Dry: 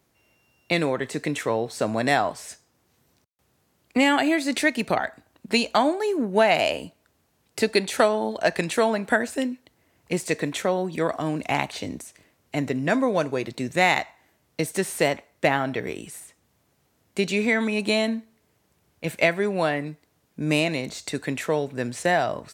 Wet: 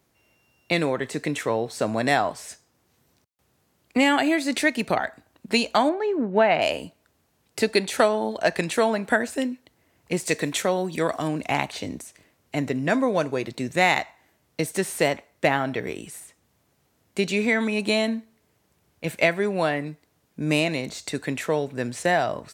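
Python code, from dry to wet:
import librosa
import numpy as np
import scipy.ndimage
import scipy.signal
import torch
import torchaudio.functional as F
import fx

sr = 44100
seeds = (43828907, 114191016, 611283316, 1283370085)

y = fx.lowpass(x, sr, hz=2500.0, slope=12, at=(5.89, 6.62))
y = fx.high_shelf(y, sr, hz=3300.0, db=7.0, at=(10.27, 11.28))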